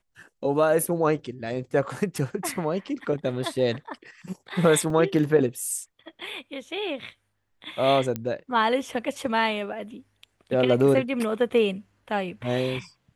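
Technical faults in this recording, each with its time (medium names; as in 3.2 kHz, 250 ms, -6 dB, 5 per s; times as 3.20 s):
4.90 s: dropout 2.5 ms
8.16 s: pop -15 dBFS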